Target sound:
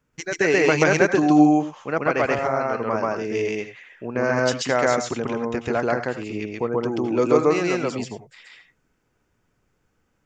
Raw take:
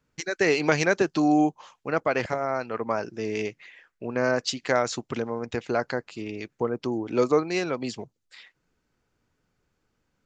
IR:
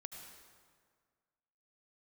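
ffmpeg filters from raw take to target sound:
-filter_complex "[0:a]equalizer=f=4.2k:w=2.8:g=-7,asplit=2[a][b];[1:a]atrim=start_sample=2205,atrim=end_sample=4410,adelay=133[c];[b][c]afir=irnorm=-1:irlink=0,volume=6.5dB[d];[a][d]amix=inputs=2:normalize=0,volume=1.5dB"

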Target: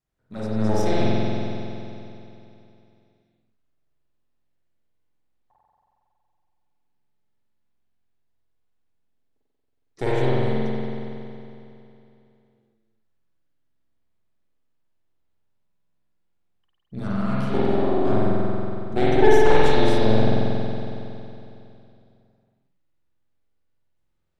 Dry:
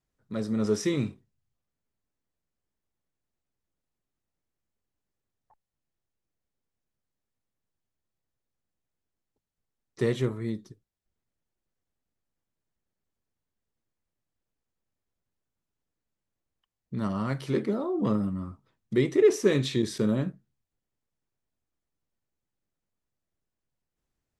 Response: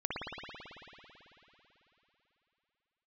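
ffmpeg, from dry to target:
-filter_complex "[0:a]aeval=exprs='0.316*(cos(1*acos(clip(val(0)/0.316,-1,1)))-cos(1*PI/2))+0.126*(cos(4*acos(clip(val(0)/0.316,-1,1)))-cos(4*PI/2))':c=same[a];[1:a]atrim=start_sample=2205,asetrate=52920,aresample=44100[b];[a][b]afir=irnorm=-1:irlink=0"

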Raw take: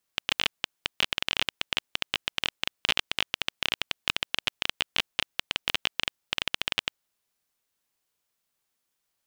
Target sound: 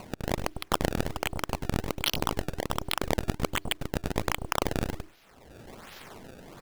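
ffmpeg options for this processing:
-filter_complex "[0:a]atempo=1.4,afreqshift=150,acompressor=threshold=-30dB:ratio=6,bandreject=f=60:t=h:w=6,bandreject=f=120:t=h:w=6,bandreject=f=180:t=h:w=6,bandreject=f=240:t=h:w=6,acrossover=split=2000[a][b];[a]aeval=exprs='abs(val(0))':c=same[c];[c][b]amix=inputs=2:normalize=0,apsyclip=20.5dB,acompressor=mode=upward:threshold=-33dB:ratio=2.5,volume=16dB,asoftclip=hard,volume=-16dB,acrossover=split=980[d][e];[d]adelay=100[f];[f][e]amix=inputs=2:normalize=0,acrusher=samples=24:mix=1:aa=0.000001:lfo=1:lforange=38.4:lforate=1.3"

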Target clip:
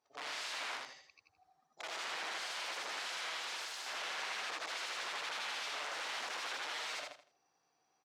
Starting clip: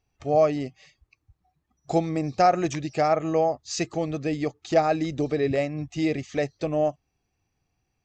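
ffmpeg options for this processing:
-af "afftfilt=real='re':imag='-im':win_size=8192:overlap=0.75,equalizer=f=2.5k:t=o:w=1.1:g=-12,areverse,acompressor=threshold=-40dB:ratio=6,areverse,aeval=exprs='(mod(237*val(0)+1,2)-1)/237':c=same,highpass=690,lowpass=4.9k,aecho=1:1:80|160|240|320:0.708|0.198|0.0555|0.0155,volume=12dB"

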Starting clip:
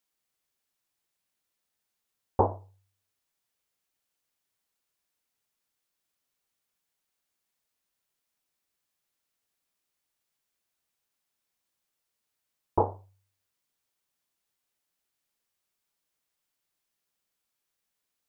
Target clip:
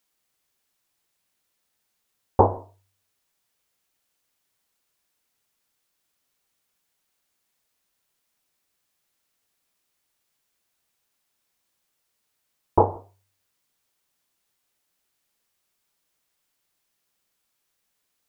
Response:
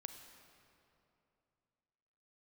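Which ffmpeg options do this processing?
-filter_complex "[0:a]asplit=2[a][b];[1:a]atrim=start_sample=2205,afade=t=out:st=0.29:d=0.01,atrim=end_sample=13230,asetrate=57330,aresample=44100[c];[b][c]afir=irnorm=-1:irlink=0,volume=-0.5dB[d];[a][d]amix=inputs=2:normalize=0,volume=4dB"

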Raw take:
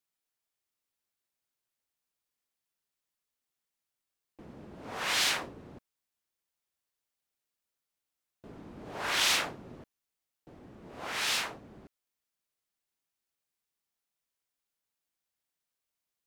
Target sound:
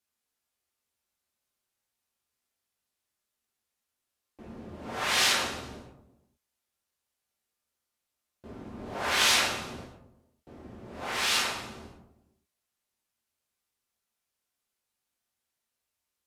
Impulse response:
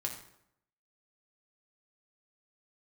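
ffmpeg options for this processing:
-filter_complex "[1:a]atrim=start_sample=2205,afade=t=out:st=0.42:d=0.01,atrim=end_sample=18963,asetrate=27783,aresample=44100[a];[0:a][a]afir=irnorm=-1:irlink=0"

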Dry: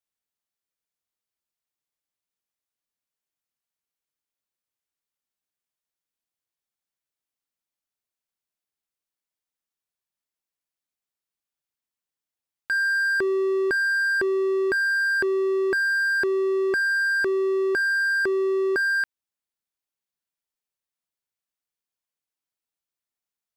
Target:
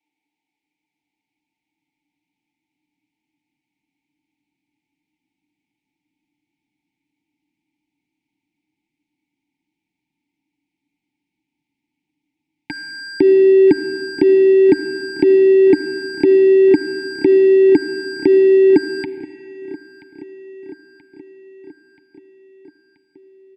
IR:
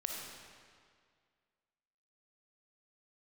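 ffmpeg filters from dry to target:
-filter_complex "[0:a]aecho=1:1:6.7:0.32,acrossover=split=180[a][b];[b]acontrast=39[c];[a][c]amix=inputs=2:normalize=0,asplit=3[d][e][f];[d]bandpass=f=300:t=q:w=8,volume=0dB[g];[e]bandpass=f=870:t=q:w=8,volume=-6dB[h];[f]bandpass=f=2.24k:t=q:w=8,volume=-9dB[i];[g][h][i]amix=inputs=3:normalize=0,asplit=2[j][k];[1:a]atrim=start_sample=2205[l];[k][l]afir=irnorm=-1:irlink=0,volume=-9dB[m];[j][m]amix=inputs=2:normalize=0,asubboost=boost=11.5:cutoff=160,asuperstop=centerf=1200:order=12:qfactor=1.8,aecho=1:1:980|1960|2940|3920|4900:0.112|0.0662|0.0391|0.023|0.0136,alimiter=level_in=22.5dB:limit=-1dB:release=50:level=0:latency=1,volume=-1dB"

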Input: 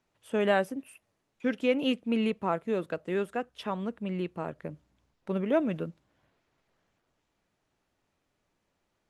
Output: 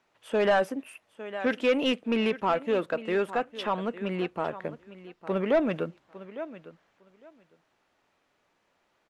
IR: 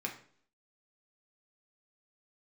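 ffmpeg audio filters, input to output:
-filter_complex "[0:a]aecho=1:1:855|1710:0.141|0.0212,asplit=2[a][b];[b]highpass=f=720:p=1,volume=17dB,asoftclip=type=tanh:threshold=-12.5dB[c];[a][c]amix=inputs=2:normalize=0,lowpass=f=2.7k:p=1,volume=-6dB,volume=-1dB"

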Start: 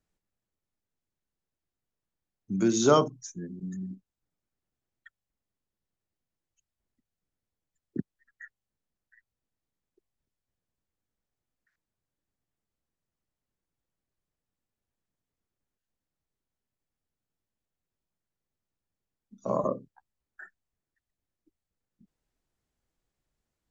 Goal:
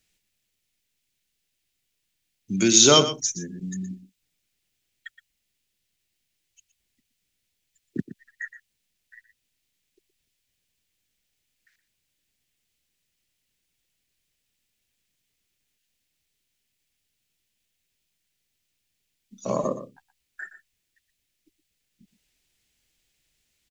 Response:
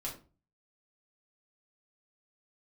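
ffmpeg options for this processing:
-af "highshelf=f=1.7k:t=q:w=1.5:g=12.5,aecho=1:1:119:0.224,volume=3.5dB"

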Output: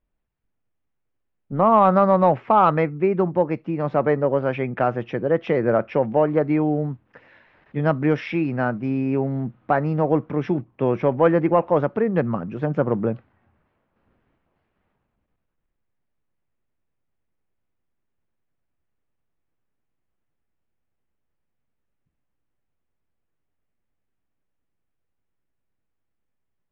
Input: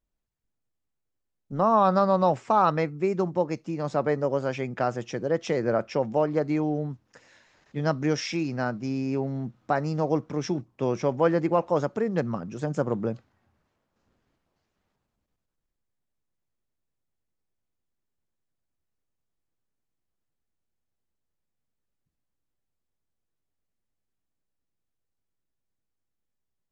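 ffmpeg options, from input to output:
-af "lowpass=f=2.8k:w=0.5412,lowpass=f=2.8k:w=1.3066,acontrast=44"

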